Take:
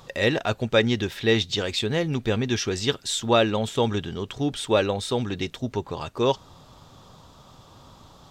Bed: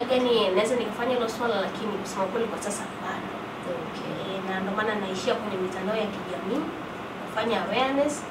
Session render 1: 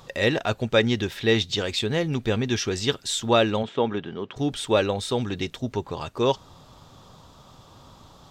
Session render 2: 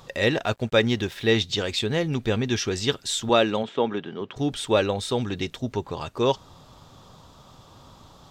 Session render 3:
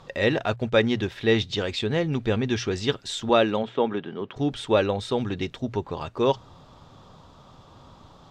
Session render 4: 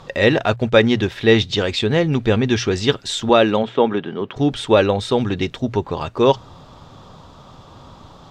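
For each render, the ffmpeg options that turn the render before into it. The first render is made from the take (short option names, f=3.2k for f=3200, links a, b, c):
-filter_complex "[0:a]asplit=3[a][b][c];[a]afade=t=out:st=3.62:d=0.02[d];[b]highpass=180,lowpass=2.5k,afade=t=in:st=3.62:d=0.02,afade=t=out:st=4.35:d=0.02[e];[c]afade=t=in:st=4.35:d=0.02[f];[d][e][f]amix=inputs=3:normalize=0"
-filter_complex "[0:a]asettb=1/sr,asplit=3[a][b][c];[a]atrim=end=0.454[d];[b]atrim=start=0.45:end=1.28,asetpts=PTS-STARTPTS,afade=t=in:d=0.004:c=qsin,afade=t=out:st=0.826:d=0.004:c=qsin,aeval=exprs='sgn(val(0))*max(abs(val(0))-0.00335,0)':c=same[e];[c]atrim=start=1.276[f];[d][e]acrossfade=d=0.004:c1=hsin:c2=qsin[g];[g][f]acrossfade=d=0.004:c1=qsin:c2=hsin,asettb=1/sr,asplit=3[h][i][j];[h]atrim=end=3.294[k];[i]atrim=start=3.29:end=4.21,asetpts=PTS-STARTPTS,afade=t=in:d=0.004:c=qsin,afade=t=out:st=0.916:d=0.004:c=qsin,highpass=150[l];[j]atrim=start=4.206[m];[k][l]acrossfade=d=0.004:c1=hsin:c2=qsin[n];[n][m]acrossfade=d=0.004:c1=qsin:c2=hsin"
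-af "aemphasis=mode=reproduction:type=50fm,bandreject=f=60:t=h:w=6,bandreject=f=120:t=h:w=6"
-af "volume=7.5dB,alimiter=limit=-1dB:level=0:latency=1"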